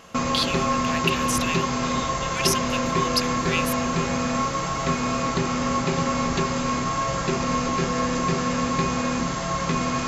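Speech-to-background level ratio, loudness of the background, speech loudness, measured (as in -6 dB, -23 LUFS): -4.5 dB, -24.0 LUFS, -28.5 LUFS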